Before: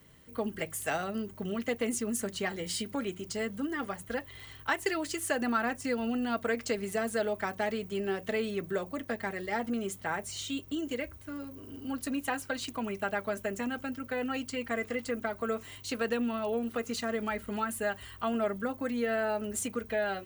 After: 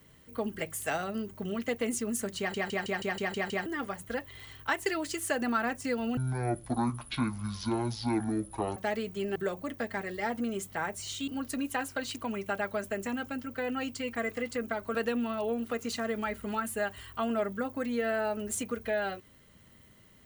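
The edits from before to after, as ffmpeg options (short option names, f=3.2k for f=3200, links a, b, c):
-filter_complex "[0:a]asplit=14[a][b][c][d][e][f][g][h][i][j][k][l][m][n];[a]atrim=end=2.542[o];[b]atrim=start=2.378:end=2.542[p];[c]atrim=start=2.378:end=2.542[q];[d]atrim=start=2.378:end=2.542[r];[e]atrim=start=2.378:end=2.542[s];[f]atrim=start=2.378:end=2.542[t];[g]atrim=start=2.378:end=2.542[u];[h]atrim=start=2.378:end=2.542[v];[i]atrim=start=3.658:end=6.174[w];[j]atrim=start=6.17:end=7.52,asetpts=PTS-STARTPTS,asetrate=22932,aresample=44100,atrim=end_sample=114490,asetpts=PTS-STARTPTS[x];[k]atrim=start=7.516:end=8.112[y];[l]atrim=start=8.648:end=10.572[z];[m]atrim=start=11.808:end=15.482[aa];[n]atrim=start=15.988[ab];[o][p]acrossfade=d=0.004:c1=hsin:c2=hsin[ac];[ac][q]acrossfade=d=0.004:c1=hsin:c2=hsin[ad];[ad][r]acrossfade=d=0.004:c1=hsin:c2=hsin[ae];[ae][s]acrossfade=d=0.004:c1=hsin:c2=hsin[af];[af][t]acrossfade=d=0.004:c1=hsin:c2=hsin[ag];[ag][u]acrossfade=d=0.004:c1=hsin:c2=hsin[ah];[ah][v]acrossfade=d=0.004:c1=hsin:c2=hsin[ai];[ai][w]acrossfade=d=0.004:c1=hsin:c2=hsin[aj];[aj][x]acrossfade=d=0.004:c1=hsin:c2=hsin[ak];[ak][y]acrossfade=d=0.004:c1=hsin:c2=hsin[al];[al][z]acrossfade=d=0.004:c1=hsin:c2=hsin[am];[am][aa]acrossfade=d=0.004:c1=hsin:c2=hsin[an];[an][ab]acrossfade=d=0.004:c1=hsin:c2=hsin"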